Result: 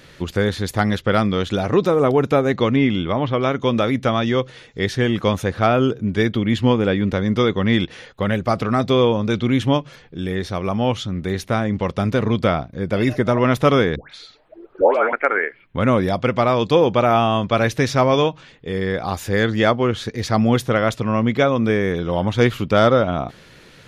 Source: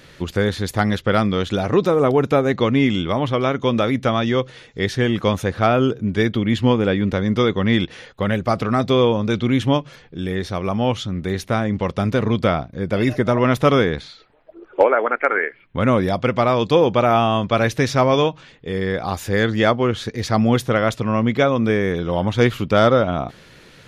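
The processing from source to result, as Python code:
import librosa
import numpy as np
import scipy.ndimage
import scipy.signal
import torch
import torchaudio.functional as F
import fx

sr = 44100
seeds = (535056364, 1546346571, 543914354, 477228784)

y = fx.bessel_lowpass(x, sr, hz=3700.0, order=8, at=(2.76, 3.43))
y = fx.dispersion(y, sr, late='highs', ms=143.0, hz=1100.0, at=(13.96, 15.13))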